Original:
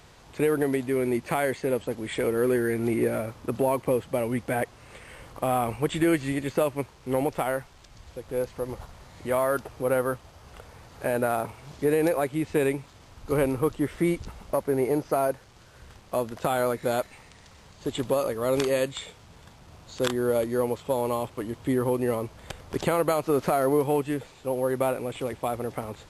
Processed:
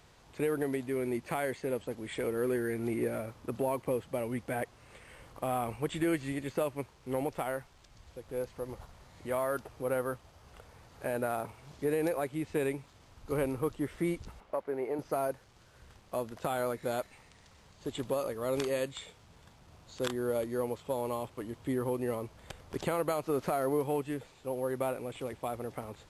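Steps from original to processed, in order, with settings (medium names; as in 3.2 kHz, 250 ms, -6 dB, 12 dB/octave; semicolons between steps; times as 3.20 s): 14.40–14.99 s: tone controls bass -13 dB, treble -14 dB; trim -7.5 dB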